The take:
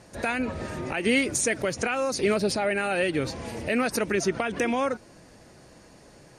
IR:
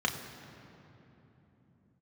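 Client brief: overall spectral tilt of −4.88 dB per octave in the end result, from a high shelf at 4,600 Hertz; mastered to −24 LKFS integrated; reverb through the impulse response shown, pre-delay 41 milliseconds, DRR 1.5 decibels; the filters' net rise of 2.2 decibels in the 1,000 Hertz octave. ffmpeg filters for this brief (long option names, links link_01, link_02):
-filter_complex "[0:a]equalizer=frequency=1000:width_type=o:gain=3.5,highshelf=frequency=4600:gain=-7,asplit=2[link_01][link_02];[1:a]atrim=start_sample=2205,adelay=41[link_03];[link_02][link_03]afir=irnorm=-1:irlink=0,volume=-10.5dB[link_04];[link_01][link_04]amix=inputs=2:normalize=0"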